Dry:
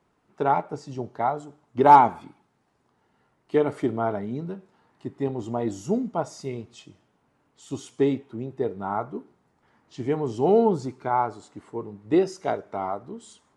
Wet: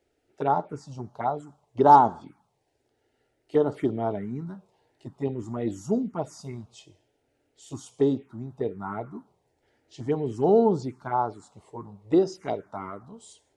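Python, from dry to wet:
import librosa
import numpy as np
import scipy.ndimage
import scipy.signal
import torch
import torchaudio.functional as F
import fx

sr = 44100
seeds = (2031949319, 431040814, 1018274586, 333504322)

y = fx.env_phaser(x, sr, low_hz=180.0, high_hz=2300.0, full_db=-19.5)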